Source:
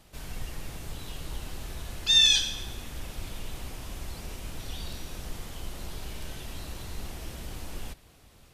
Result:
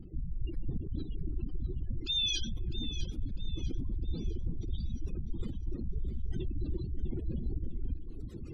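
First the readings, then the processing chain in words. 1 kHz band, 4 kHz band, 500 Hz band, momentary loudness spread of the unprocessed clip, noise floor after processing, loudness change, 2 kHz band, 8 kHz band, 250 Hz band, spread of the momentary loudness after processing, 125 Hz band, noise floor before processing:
under -20 dB, -11.0 dB, -1.5 dB, 20 LU, -42 dBFS, -13.0 dB, -14.5 dB, -14.0 dB, +5.0 dB, 8 LU, +4.5 dB, -56 dBFS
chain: reverb removal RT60 1.3 s; spectral gate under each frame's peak -15 dB strong; resonant low shelf 480 Hz +12 dB, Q 3; reverse; compression 6:1, threshold -38 dBFS, peak gain reduction 19 dB; reverse; echo whose repeats swap between lows and highs 326 ms, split 1.2 kHz, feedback 62%, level -8 dB; trim +7 dB

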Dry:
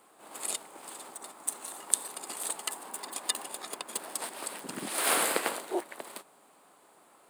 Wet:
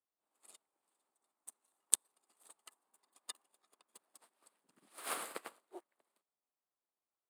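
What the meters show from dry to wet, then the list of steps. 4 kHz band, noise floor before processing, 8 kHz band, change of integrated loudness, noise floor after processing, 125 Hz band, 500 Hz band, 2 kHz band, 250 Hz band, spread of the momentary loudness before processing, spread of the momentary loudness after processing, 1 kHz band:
-14.5 dB, -61 dBFS, -9.5 dB, -6.5 dB, under -85 dBFS, under -20 dB, -18.0 dB, -16.5 dB, -19.5 dB, 17 LU, 23 LU, -15.5 dB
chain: Chebyshev shaper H 3 -17 dB, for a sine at -1 dBFS; dynamic bell 1.2 kHz, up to +6 dB, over -58 dBFS, Q 5.3; upward expansion 2.5:1, over -46 dBFS; trim -2 dB

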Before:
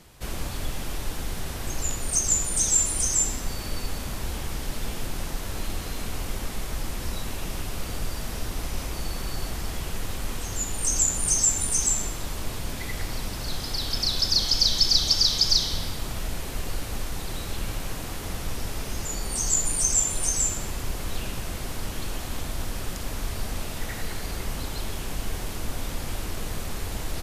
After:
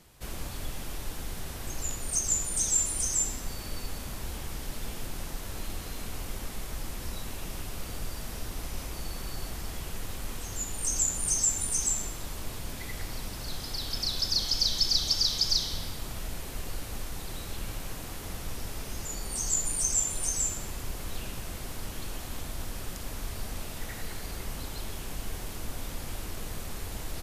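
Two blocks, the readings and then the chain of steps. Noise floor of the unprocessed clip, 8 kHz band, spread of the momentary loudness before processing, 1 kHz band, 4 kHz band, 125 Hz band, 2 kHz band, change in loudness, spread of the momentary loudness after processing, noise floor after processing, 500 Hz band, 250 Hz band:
-34 dBFS, -4.5 dB, 14 LU, -6.0 dB, -5.5 dB, -6.0 dB, -6.0 dB, -5.0 dB, 14 LU, -40 dBFS, -6.0 dB, -6.0 dB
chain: treble shelf 9.9 kHz +4.5 dB; trim -6 dB

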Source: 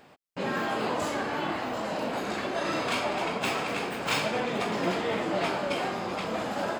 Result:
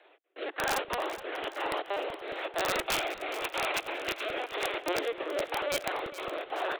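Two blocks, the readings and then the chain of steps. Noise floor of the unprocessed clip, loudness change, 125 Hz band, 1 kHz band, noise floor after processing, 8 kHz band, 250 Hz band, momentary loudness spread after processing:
-54 dBFS, -3.0 dB, -14.5 dB, -3.5 dB, -60 dBFS, +0.5 dB, -10.0 dB, 6 LU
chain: spring tank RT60 2.4 s, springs 39 ms, chirp 30 ms, DRR 14.5 dB; chorus voices 2, 1.3 Hz, delay 28 ms, depth 3 ms; trance gate "xx.xxx.x" 182 bpm -24 dB; LPC vocoder at 8 kHz pitch kept; steep high-pass 310 Hz 72 dB/octave; rotary cabinet horn 1 Hz; treble shelf 2.3 kHz +5 dB; integer overflow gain 25.5 dB; on a send: two-band feedback delay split 480 Hz, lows 246 ms, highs 420 ms, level -14 dB; on the sum: crackling interface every 0.22 s, samples 64, repeat, from 0.78 s; trim +4.5 dB

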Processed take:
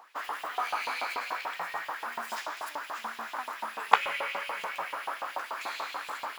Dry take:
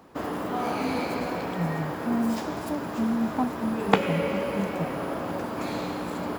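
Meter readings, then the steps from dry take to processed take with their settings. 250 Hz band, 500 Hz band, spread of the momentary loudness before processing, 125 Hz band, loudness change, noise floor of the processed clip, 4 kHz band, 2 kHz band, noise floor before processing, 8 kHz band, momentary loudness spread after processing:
-29.0 dB, -12.5 dB, 7 LU, under -35 dB, -5.0 dB, -46 dBFS, +0.5 dB, +2.0 dB, -34 dBFS, -1.5 dB, 11 LU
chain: LFO high-pass saw up 6.9 Hz 800–3200 Hz; trim -2 dB

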